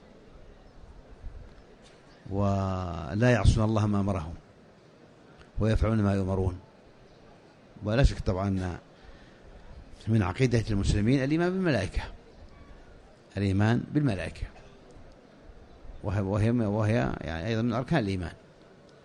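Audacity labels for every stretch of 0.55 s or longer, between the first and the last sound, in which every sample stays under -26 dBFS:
4.190000	5.580000	silence
6.490000	7.860000	silence
8.760000	10.080000	silence
12.040000	13.370000	silence
14.430000	16.070000	silence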